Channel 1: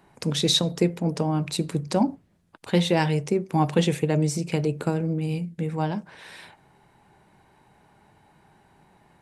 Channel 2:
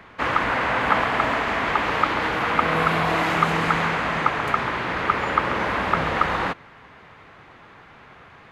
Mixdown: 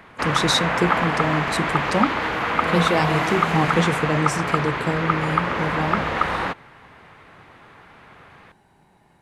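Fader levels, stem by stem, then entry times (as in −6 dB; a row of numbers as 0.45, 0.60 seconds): +0.5, −0.5 decibels; 0.00, 0.00 seconds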